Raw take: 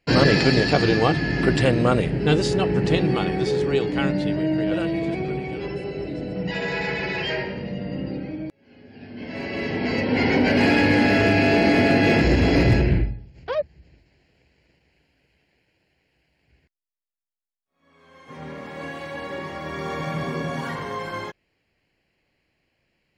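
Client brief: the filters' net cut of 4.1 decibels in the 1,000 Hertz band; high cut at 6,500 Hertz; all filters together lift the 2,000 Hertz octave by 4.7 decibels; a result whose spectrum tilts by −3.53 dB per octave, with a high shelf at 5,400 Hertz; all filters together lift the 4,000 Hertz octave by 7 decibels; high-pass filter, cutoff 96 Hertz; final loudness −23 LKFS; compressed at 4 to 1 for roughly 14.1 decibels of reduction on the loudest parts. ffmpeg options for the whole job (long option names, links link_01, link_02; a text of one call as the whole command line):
ffmpeg -i in.wav -af "highpass=96,lowpass=6500,equalizer=frequency=1000:width_type=o:gain=-8,equalizer=frequency=2000:width_type=o:gain=5.5,equalizer=frequency=4000:width_type=o:gain=6,highshelf=frequency=5400:gain=5.5,acompressor=threshold=-30dB:ratio=4,volume=8.5dB" out.wav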